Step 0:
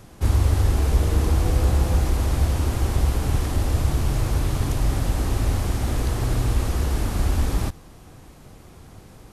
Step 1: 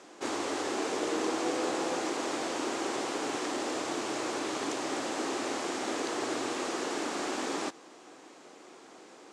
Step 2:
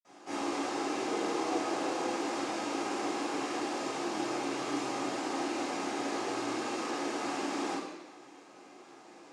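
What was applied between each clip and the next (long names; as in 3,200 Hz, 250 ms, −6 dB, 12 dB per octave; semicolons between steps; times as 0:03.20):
elliptic band-pass filter 310–7,600 Hz, stop band 60 dB
convolution reverb RT60 1.2 s, pre-delay 46 ms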